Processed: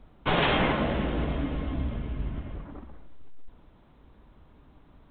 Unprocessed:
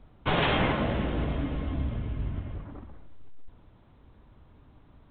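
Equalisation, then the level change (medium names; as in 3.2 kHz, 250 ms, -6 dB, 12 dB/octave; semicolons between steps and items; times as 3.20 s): peaking EQ 100 Hz -11.5 dB 0.41 oct; +1.5 dB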